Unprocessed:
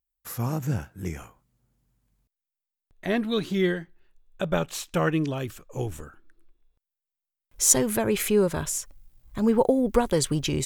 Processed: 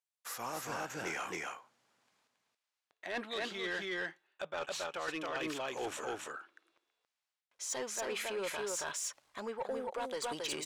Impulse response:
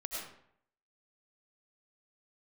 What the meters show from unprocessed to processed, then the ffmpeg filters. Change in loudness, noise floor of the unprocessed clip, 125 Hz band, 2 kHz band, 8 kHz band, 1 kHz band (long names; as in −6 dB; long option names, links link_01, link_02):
−13.5 dB, below −85 dBFS, −26.5 dB, −3.5 dB, −14.0 dB, −7.0 dB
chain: -filter_complex "[0:a]aecho=1:1:274:0.596,acrossover=split=5900[link_01][link_02];[link_01]dynaudnorm=framelen=580:gausssize=3:maxgain=11dB[link_03];[link_03][link_02]amix=inputs=2:normalize=0,highpass=690,areverse,acompressor=threshold=-32dB:ratio=20,areverse,lowpass=9400,asoftclip=type=tanh:threshold=-30.5dB"